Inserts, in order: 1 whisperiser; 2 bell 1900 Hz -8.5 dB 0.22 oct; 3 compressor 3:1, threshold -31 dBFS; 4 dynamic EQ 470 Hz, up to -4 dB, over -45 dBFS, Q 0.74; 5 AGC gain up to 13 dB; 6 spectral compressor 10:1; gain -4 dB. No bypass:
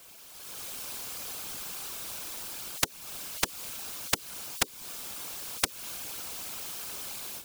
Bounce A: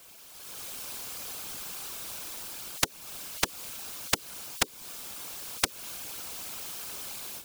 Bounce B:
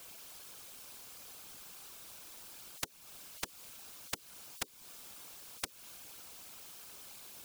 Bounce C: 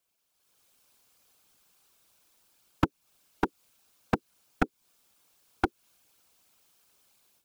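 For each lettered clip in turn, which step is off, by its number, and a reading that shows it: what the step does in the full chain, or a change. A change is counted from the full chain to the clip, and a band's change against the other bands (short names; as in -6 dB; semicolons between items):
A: 4, momentary loudness spread change +2 LU; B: 5, momentary loudness spread change -1 LU; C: 6, 8 kHz band -31.0 dB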